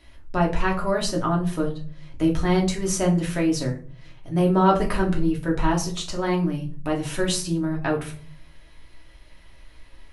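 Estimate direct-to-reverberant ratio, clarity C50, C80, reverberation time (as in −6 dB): −2.0 dB, 10.5 dB, 15.5 dB, 0.45 s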